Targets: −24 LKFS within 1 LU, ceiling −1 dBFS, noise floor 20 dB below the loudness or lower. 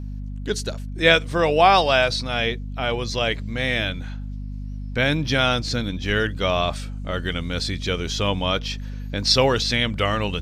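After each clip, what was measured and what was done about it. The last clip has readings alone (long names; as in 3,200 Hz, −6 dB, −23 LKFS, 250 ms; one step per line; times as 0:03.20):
mains hum 50 Hz; hum harmonics up to 250 Hz; level of the hum −28 dBFS; integrated loudness −21.5 LKFS; sample peak −2.5 dBFS; target loudness −24.0 LKFS
→ mains-hum notches 50/100/150/200/250 Hz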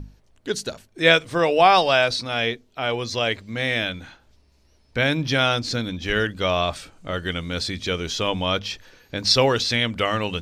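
mains hum none found; integrated loudness −21.5 LKFS; sample peak −2.0 dBFS; target loudness −24.0 LKFS
→ level −2.5 dB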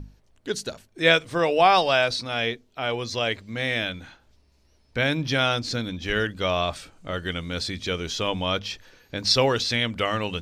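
integrated loudness −24.0 LKFS; sample peak −4.5 dBFS; background noise floor −62 dBFS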